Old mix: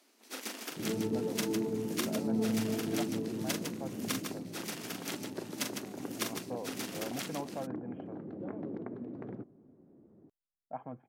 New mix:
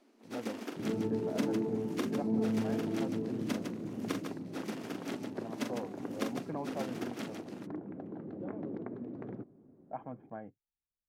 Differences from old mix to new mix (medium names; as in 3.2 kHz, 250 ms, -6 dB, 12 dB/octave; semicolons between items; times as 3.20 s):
speech: entry -0.80 s; first sound: add tilt EQ -4 dB/octave